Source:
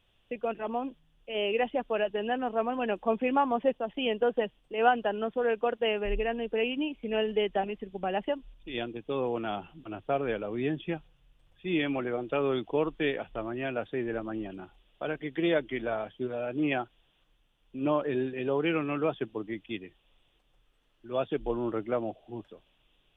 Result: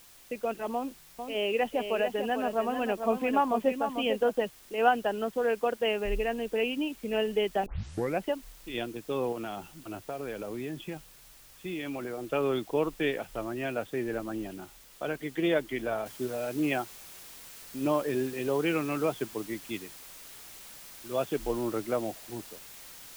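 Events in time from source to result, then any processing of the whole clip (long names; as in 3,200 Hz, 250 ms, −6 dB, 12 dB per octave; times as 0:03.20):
0:00.74–0:04.31: single-tap delay 446 ms −7.5 dB
0:07.66: tape start 0.57 s
0:09.32–0:12.24: downward compressor, threshold −32 dBFS
0:16.06: noise floor change −55 dB −48 dB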